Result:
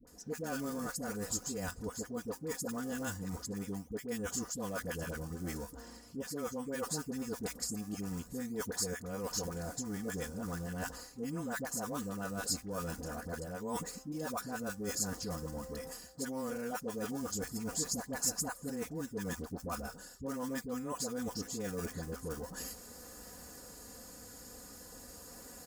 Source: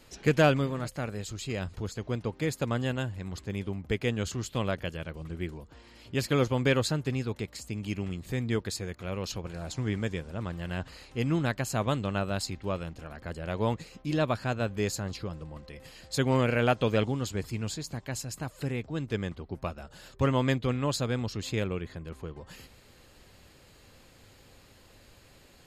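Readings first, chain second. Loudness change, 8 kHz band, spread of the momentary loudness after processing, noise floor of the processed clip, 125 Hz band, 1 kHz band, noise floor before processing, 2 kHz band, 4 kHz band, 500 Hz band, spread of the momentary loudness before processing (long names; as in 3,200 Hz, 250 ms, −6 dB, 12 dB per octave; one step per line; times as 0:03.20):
−8.0 dB, +4.0 dB, 13 LU, −54 dBFS, −14.0 dB, −8.0 dB, −57 dBFS, −9.0 dB, −7.0 dB, −9.5 dB, 13 LU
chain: in parallel at −9 dB: sample-and-hold swept by an LFO 26×, swing 160% 0.42 Hz
on the sum: high-pass filter 81 Hz 6 dB per octave
flat-topped bell 3,000 Hz −12 dB 1.2 octaves
comb filter 4.1 ms, depth 73%
all-pass dispersion highs, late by 72 ms, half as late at 700 Hz
reversed playback
downward compressor 12 to 1, threshold −37 dBFS, peak gain reduction 21.5 dB
reversed playback
bass and treble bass 0 dB, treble +11 dB
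level +1 dB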